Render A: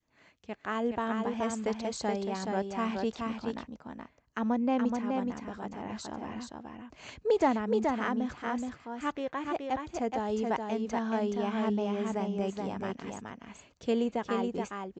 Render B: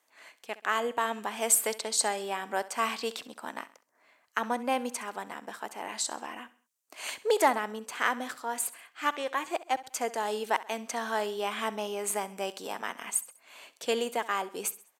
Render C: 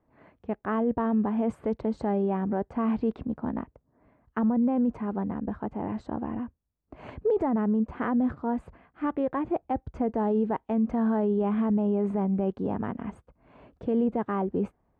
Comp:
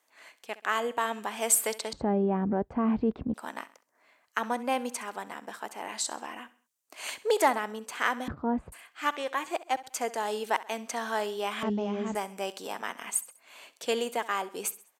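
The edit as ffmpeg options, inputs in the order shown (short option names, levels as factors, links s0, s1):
-filter_complex "[2:a]asplit=2[s0][s1];[1:a]asplit=4[s2][s3][s4][s5];[s2]atrim=end=1.932[s6];[s0]atrim=start=1.928:end=3.342[s7];[s3]atrim=start=3.338:end=8.282[s8];[s1]atrim=start=8.278:end=8.722[s9];[s4]atrim=start=8.718:end=11.632[s10];[0:a]atrim=start=11.628:end=12.152[s11];[s5]atrim=start=12.148[s12];[s6][s7]acrossfade=d=0.004:c1=hsin:c2=hsin[s13];[s13][s8]acrossfade=d=0.004:c1=hsin:c2=hsin[s14];[s14][s9]acrossfade=d=0.004:c1=hsin:c2=hsin[s15];[s15][s10]acrossfade=d=0.004:c1=hsin:c2=hsin[s16];[s16][s11]acrossfade=d=0.004:c1=hsin:c2=hsin[s17];[s17][s12]acrossfade=d=0.004:c1=hsin:c2=hsin"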